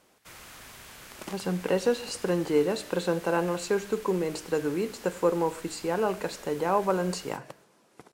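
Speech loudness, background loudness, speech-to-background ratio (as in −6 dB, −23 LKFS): −29.0 LKFS, −46.5 LKFS, 17.5 dB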